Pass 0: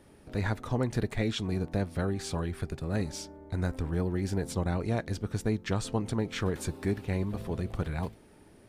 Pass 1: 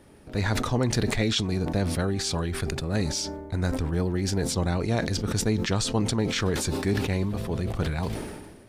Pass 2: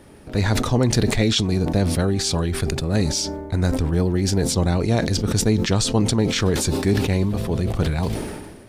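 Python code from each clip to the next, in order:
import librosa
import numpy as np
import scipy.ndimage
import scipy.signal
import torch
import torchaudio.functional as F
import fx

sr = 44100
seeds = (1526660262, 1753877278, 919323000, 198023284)

y1 = fx.dynamic_eq(x, sr, hz=5100.0, q=0.86, threshold_db=-56.0, ratio=4.0, max_db=8)
y1 = fx.sustainer(y1, sr, db_per_s=41.0)
y1 = F.gain(torch.from_numpy(y1), 3.5).numpy()
y2 = fx.dynamic_eq(y1, sr, hz=1500.0, q=0.76, threshold_db=-41.0, ratio=4.0, max_db=-4)
y2 = F.gain(torch.from_numpy(y2), 6.5).numpy()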